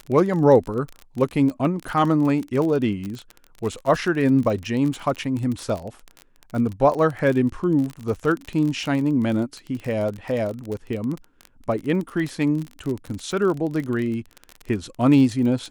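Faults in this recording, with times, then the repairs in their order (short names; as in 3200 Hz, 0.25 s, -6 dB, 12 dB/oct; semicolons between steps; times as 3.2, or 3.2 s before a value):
crackle 30/s -26 dBFS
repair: de-click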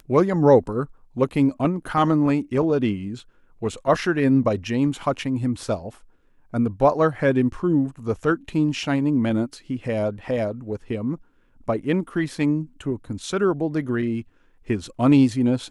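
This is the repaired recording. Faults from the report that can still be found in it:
none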